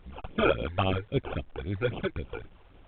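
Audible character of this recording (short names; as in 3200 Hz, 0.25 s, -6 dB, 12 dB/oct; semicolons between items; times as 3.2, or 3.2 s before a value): aliases and images of a low sample rate 1900 Hz, jitter 0%; phasing stages 12, 3.7 Hz, lowest notch 180–1700 Hz; a quantiser's noise floor 10-bit, dither none; µ-law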